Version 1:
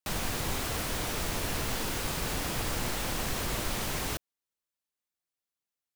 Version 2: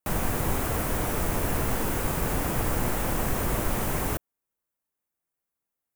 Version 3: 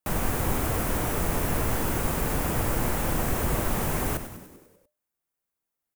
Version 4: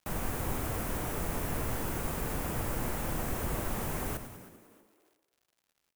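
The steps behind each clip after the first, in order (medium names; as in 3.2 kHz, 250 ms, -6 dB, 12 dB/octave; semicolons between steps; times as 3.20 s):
peaking EQ 4.2 kHz -14 dB 1.7 oct; trim +7 dB
frequency-shifting echo 98 ms, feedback 61%, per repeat -86 Hz, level -11 dB
crackle 130 per s -50 dBFS; frequency-shifting echo 318 ms, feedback 38%, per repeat +99 Hz, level -19 dB; trim -7.5 dB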